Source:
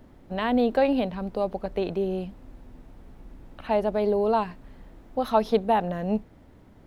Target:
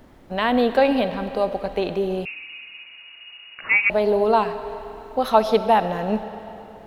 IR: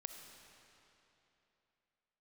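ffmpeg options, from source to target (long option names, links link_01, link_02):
-filter_complex "[0:a]asplit=2[link_01][link_02];[link_02]highpass=frequency=670:poles=1[link_03];[1:a]atrim=start_sample=2205[link_04];[link_03][link_04]afir=irnorm=-1:irlink=0,volume=7.5dB[link_05];[link_01][link_05]amix=inputs=2:normalize=0,asettb=1/sr,asplit=3[link_06][link_07][link_08];[link_06]atrim=end=2.254[link_09];[link_07]atrim=start=2.25:end=3.9,asetpts=PTS-STARTPTS,afade=type=in:duration=0.004:curve=qsin,afade=type=out:start_time=1.646:duration=0.004:curve=qsin,lowpass=frequency=2500:width_type=q:width=0.5098,lowpass=frequency=2500:width_type=q:width=0.6013,lowpass=frequency=2500:width_type=q:width=0.9,lowpass=frequency=2500:width_type=q:width=2.563,afreqshift=-2900[link_10];[link_08]atrim=start=3.896[link_11];[link_09][link_10]acrossfade=duration=0.004:curve1=hsin:curve2=qsin[link_12];[link_12][link_11]acrossfade=duration=0.004:curve1=qsin:curve2=hsin"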